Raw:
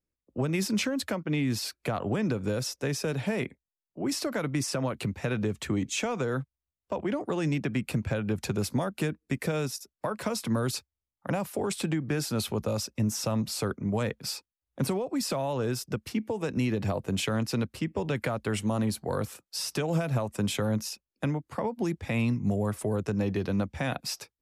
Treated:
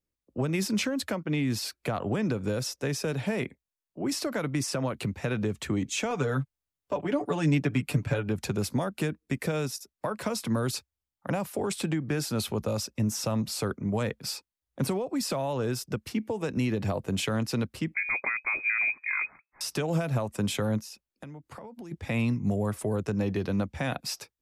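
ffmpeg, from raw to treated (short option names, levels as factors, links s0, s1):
-filter_complex "[0:a]asettb=1/sr,asplit=3[s0][s1][s2];[s0]atrim=end=6.104[s3];[s1]atrim=start=6.1:end=8.29,asetpts=PTS-STARTPTS,afade=t=in:d=0.004:c=qsin,afade=t=out:st=2.186:d=0.004:c=qsin,aecho=1:1:6.9:0.71,atrim=end_sample=96579[s4];[s2]atrim=start=8.286[s5];[s3][s4]acrossfade=d=0.004:c1=hsin:c2=qsin[s6];[s6][s5]acrossfade=d=0.004:c1=qsin:c2=hsin,asettb=1/sr,asplit=3[s7][s8][s9];[s7]atrim=end=17.944[s10];[s8]atrim=start=17.94:end=19.61,asetpts=PTS-STARTPTS,afade=t=in:d=0.004:c=qsin,afade=t=out:st=1.666:d=0.004:c=qsin,lowpass=f=2200:t=q:w=0.5098,lowpass=f=2200:t=q:w=0.6013,lowpass=f=2200:t=q:w=0.9,lowpass=f=2200:t=q:w=2.563,afreqshift=-2600[s11];[s9]atrim=start=19.606[s12];[s10][s11]acrossfade=d=0.004:c1=hsin:c2=qsin[s13];[s13][s12]acrossfade=d=0.004:c1=qsin:c2=hsin,asplit=3[s14][s15][s16];[s14]afade=t=out:st=20.79:d=0.02[s17];[s15]acompressor=threshold=0.0112:ratio=16:attack=3.2:release=140:knee=1:detection=peak,afade=t=in:st=20.79:d=0.02,afade=t=out:st=21.91:d=0.02[s18];[s16]afade=t=in:st=21.91:d=0.02[s19];[s17][s18][s19]amix=inputs=3:normalize=0"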